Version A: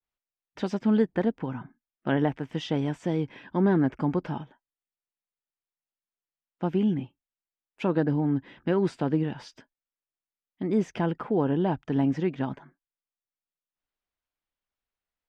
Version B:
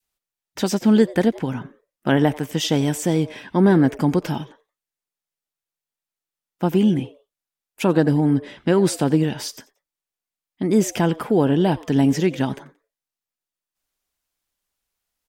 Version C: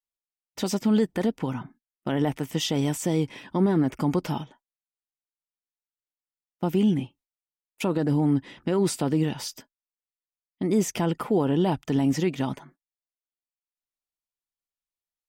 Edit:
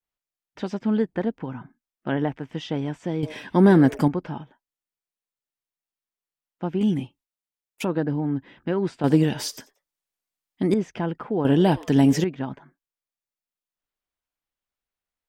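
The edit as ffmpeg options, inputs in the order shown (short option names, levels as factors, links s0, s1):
-filter_complex "[1:a]asplit=3[s0][s1][s2];[0:a]asplit=5[s3][s4][s5][s6][s7];[s3]atrim=end=3.232[s8];[s0]atrim=start=3.228:end=4.082[s9];[s4]atrim=start=4.078:end=6.812[s10];[2:a]atrim=start=6.808:end=7.852[s11];[s5]atrim=start=7.848:end=9.042[s12];[s1]atrim=start=9.038:end=10.742[s13];[s6]atrim=start=10.738:end=11.452[s14];[s2]atrim=start=11.448:end=12.242[s15];[s7]atrim=start=12.238[s16];[s8][s9]acrossfade=d=0.004:c1=hsin:c2=hsin[s17];[s17][s10]acrossfade=d=0.004:c1=hsin:c2=hsin[s18];[s18][s11]acrossfade=d=0.004:c1=hsin:c2=hsin[s19];[s19][s12]acrossfade=d=0.004:c1=hsin:c2=hsin[s20];[s20][s13]acrossfade=d=0.004:c1=hsin:c2=hsin[s21];[s21][s14]acrossfade=d=0.004:c1=hsin:c2=hsin[s22];[s22][s15]acrossfade=d=0.004:c1=hsin:c2=hsin[s23];[s23][s16]acrossfade=d=0.004:c1=hsin:c2=hsin"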